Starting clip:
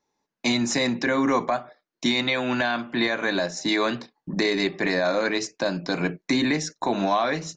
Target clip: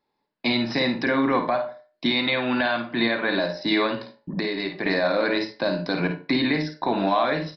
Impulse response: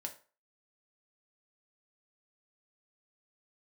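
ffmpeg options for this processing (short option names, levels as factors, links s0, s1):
-filter_complex "[0:a]asettb=1/sr,asplit=3[s0][s1][s2];[s0]atrim=end=3.864[s3];[s1]atrim=start=3.86:end=4.86,asetpts=PTS-STARTPTS,afade=t=in:d=0.004:c=qsin,afade=t=out:st=0.996:d=0.004:c=qsin,acompressor=threshold=0.0501:ratio=3[s4];[s2]atrim=start=4.856[s5];[s3][s4]acrossfade=d=0.004:c1=hsin:c2=qsin[s6];[s6][s5]acrossfade=d=0.004:c1=qsin:c2=hsin,asplit=2[s7][s8];[1:a]atrim=start_sample=2205,adelay=52[s9];[s8][s9]afir=irnorm=-1:irlink=0,volume=0.631[s10];[s7][s10]amix=inputs=2:normalize=0,aresample=11025,aresample=44100"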